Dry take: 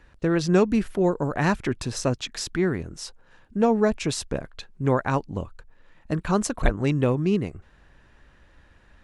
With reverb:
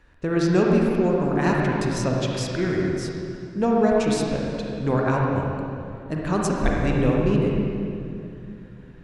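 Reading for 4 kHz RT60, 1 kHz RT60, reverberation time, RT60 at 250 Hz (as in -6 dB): 2.1 s, 2.4 s, 2.6 s, 3.4 s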